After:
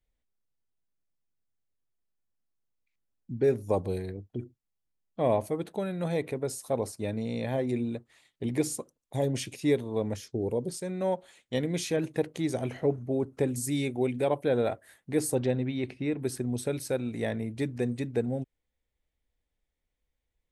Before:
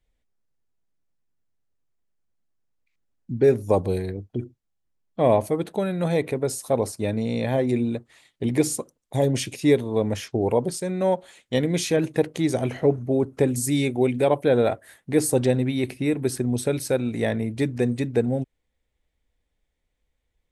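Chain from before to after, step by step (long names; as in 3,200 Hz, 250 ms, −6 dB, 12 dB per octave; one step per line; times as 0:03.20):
0:10.16–0:10.70: flat-topped bell 1,400 Hz −10 dB 2.5 octaves
0:15.35–0:16.20: low-pass filter 4,400 Hz 12 dB per octave
level −7 dB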